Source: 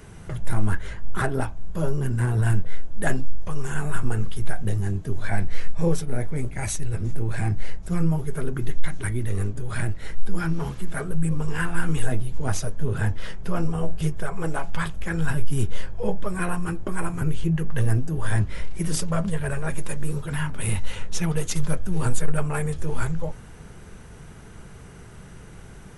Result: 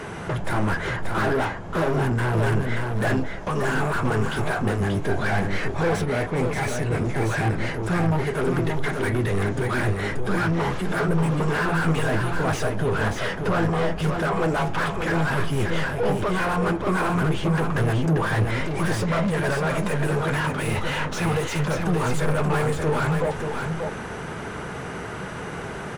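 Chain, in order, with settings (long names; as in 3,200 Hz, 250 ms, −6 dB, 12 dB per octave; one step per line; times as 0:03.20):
mid-hump overdrive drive 35 dB, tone 1,200 Hz, clips at −7 dBFS
single-tap delay 582 ms −5 dB
level −7 dB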